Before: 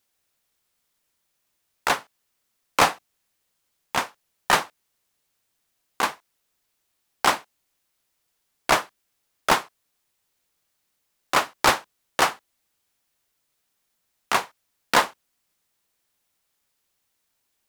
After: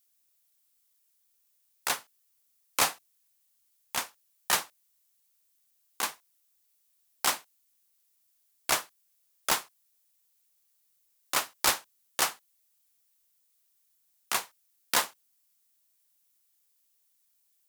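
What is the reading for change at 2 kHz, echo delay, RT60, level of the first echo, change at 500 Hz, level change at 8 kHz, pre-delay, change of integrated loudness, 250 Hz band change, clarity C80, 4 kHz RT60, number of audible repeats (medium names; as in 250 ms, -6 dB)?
-8.5 dB, no echo, no reverb, no echo, -12.0 dB, +1.0 dB, no reverb, -6.0 dB, -12.5 dB, no reverb, no reverb, no echo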